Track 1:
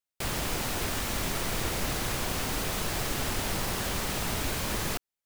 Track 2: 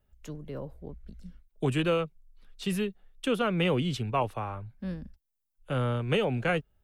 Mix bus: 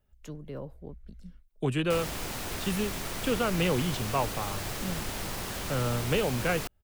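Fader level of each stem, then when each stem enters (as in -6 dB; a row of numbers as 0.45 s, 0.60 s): -4.5 dB, -1.0 dB; 1.70 s, 0.00 s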